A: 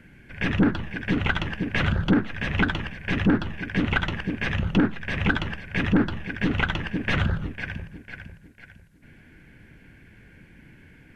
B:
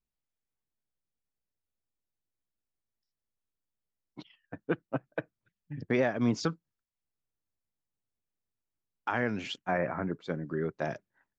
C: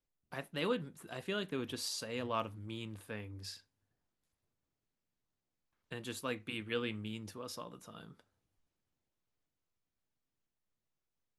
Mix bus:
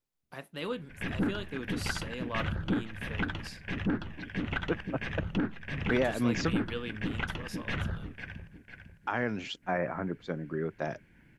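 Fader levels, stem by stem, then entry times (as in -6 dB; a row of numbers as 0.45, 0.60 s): -10.0, -1.0, -1.0 dB; 0.60, 0.00, 0.00 s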